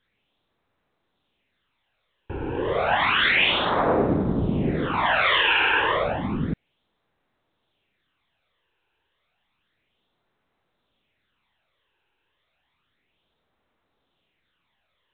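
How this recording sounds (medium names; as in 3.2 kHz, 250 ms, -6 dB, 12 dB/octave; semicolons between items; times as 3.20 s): a quantiser's noise floor 12-bit, dither triangular; phasing stages 12, 0.31 Hz, lowest notch 200–3100 Hz; µ-law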